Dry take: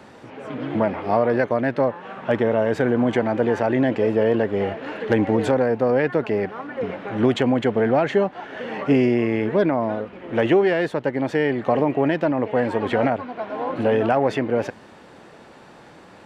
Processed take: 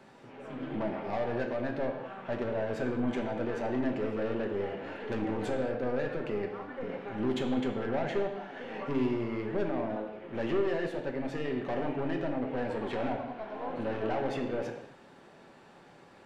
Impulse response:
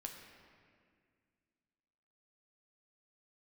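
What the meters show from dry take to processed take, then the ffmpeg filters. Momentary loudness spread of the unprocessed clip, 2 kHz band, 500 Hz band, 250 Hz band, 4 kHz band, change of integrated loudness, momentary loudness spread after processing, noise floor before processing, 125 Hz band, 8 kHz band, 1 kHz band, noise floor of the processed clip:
9 LU, −12.5 dB, −12.5 dB, −11.5 dB, −10.5 dB, −12.5 dB, 8 LU, −46 dBFS, −12.0 dB, can't be measured, −12.0 dB, −55 dBFS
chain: -filter_complex "[0:a]aeval=exprs='(tanh(7.94*val(0)+0.25)-tanh(0.25))/7.94':channel_layout=same[link_01];[1:a]atrim=start_sample=2205,afade=type=out:start_time=0.44:duration=0.01,atrim=end_sample=19845,asetrate=70560,aresample=44100[link_02];[link_01][link_02]afir=irnorm=-1:irlink=0,volume=-1.5dB"

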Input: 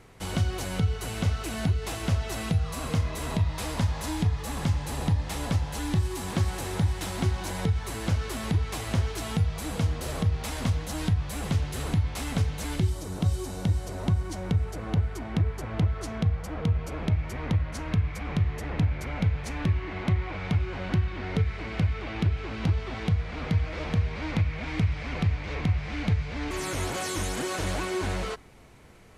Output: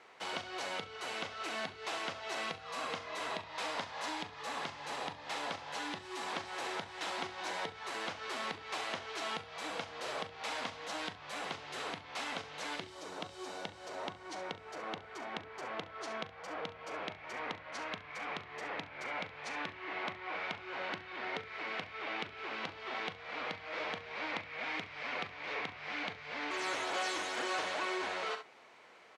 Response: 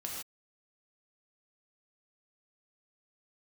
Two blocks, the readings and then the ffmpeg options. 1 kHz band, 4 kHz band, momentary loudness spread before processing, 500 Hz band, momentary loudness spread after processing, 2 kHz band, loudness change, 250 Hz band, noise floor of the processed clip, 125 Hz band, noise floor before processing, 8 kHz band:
−1.5 dB, −2.5 dB, 2 LU, −6.0 dB, 7 LU, −1.0 dB, −10.5 dB, −17.0 dB, −53 dBFS, −32.5 dB, −36 dBFS, −10.5 dB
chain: -af "aecho=1:1:40|68:0.266|0.282,acompressor=threshold=-26dB:ratio=6,highpass=600,lowpass=4400"

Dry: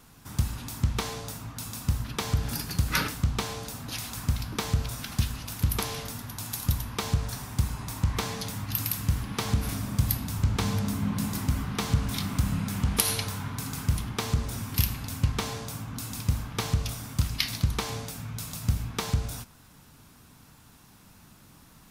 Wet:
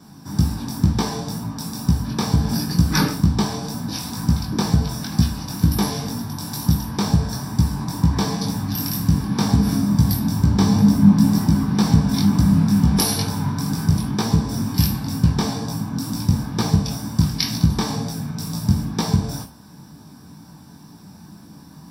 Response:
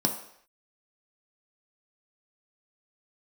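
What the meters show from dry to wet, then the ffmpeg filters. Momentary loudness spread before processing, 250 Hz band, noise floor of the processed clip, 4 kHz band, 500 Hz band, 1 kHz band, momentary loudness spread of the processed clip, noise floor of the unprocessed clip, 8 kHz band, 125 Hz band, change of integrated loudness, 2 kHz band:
8 LU, +16.0 dB, −44 dBFS, +6.5 dB, +7.5 dB, +7.5 dB, 10 LU, −55 dBFS, +4.5 dB, +9.5 dB, +10.0 dB, +2.5 dB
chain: -filter_complex "[0:a]equalizer=frequency=74:width_type=o:width=0.24:gain=11.5,flanger=delay=17:depth=6.2:speed=2.1[link_01];[1:a]atrim=start_sample=2205,atrim=end_sample=3528[link_02];[link_01][link_02]afir=irnorm=-1:irlink=0"

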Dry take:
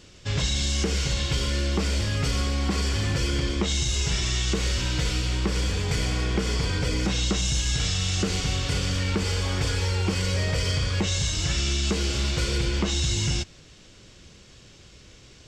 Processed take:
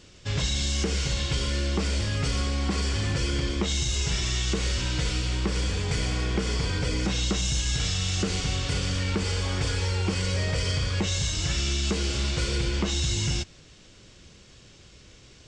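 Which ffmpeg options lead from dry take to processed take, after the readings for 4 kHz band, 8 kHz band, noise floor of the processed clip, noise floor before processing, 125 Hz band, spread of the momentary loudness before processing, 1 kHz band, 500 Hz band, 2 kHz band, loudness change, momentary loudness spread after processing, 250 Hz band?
−1.5 dB, −1.5 dB, −52 dBFS, −50 dBFS, −1.5 dB, 2 LU, −1.5 dB, −1.5 dB, −1.5 dB, −1.5 dB, 2 LU, −1.5 dB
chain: -af "aresample=22050,aresample=44100,volume=-1.5dB"

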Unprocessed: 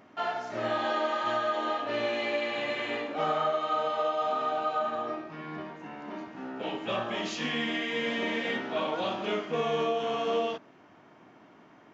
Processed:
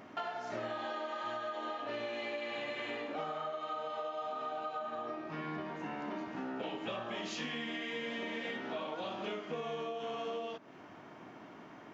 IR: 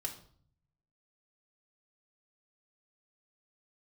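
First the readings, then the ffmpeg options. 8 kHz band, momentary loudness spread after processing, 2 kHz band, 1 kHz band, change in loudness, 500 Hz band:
can't be measured, 5 LU, −8.0 dB, −9.0 dB, −9.0 dB, −9.0 dB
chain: -af "acompressor=threshold=-40dB:ratio=10,volume=3.5dB"

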